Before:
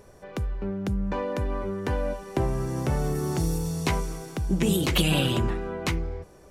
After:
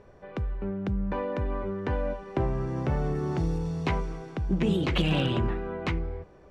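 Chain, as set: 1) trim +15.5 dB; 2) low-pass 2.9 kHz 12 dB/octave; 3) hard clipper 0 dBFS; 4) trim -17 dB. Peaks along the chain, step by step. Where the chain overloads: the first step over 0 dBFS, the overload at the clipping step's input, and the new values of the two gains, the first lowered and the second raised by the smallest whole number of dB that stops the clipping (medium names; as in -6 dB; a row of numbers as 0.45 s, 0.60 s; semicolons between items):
+6.5 dBFS, +4.0 dBFS, 0.0 dBFS, -17.0 dBFS; step 1, 4.0 dB; step 1 +11.5 dB, step 4 -13 dB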